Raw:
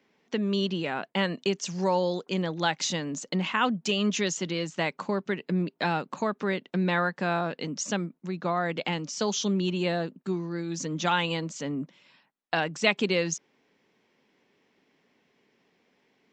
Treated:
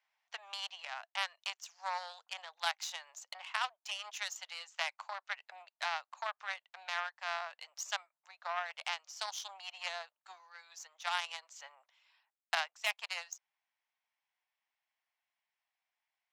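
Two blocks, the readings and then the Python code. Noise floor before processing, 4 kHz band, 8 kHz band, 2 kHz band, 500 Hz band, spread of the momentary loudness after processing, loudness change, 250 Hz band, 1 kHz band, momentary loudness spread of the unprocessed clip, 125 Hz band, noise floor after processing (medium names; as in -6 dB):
-71 dBFS, -7.5 dB, -10.5 dB, -7.5 dB, -21.0 dB, 13 LU, -11.0 dB, under -40 dB, -9.0 dB, 7 LU, under -40 dB, under -85 dBFS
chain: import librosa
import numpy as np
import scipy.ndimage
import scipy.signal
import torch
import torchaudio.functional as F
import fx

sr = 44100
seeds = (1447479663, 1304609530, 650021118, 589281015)

y = fx.cheby_harmonics(x, sr, harmonics=(2, 6, 7, 8), levels_db=(-18, -21, -20, -22), full_scale_db=-8.0)
y = fx.rider(y, sr, range_db=5, speed_s=0.5)
y = scipy.signal.sosfilt(scipy.signal.butter(8, 690.0, 'highpass', fs=sr, output='sos'), y)
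y = F.gain(torch.from_numpy(y), -5.5).numpy()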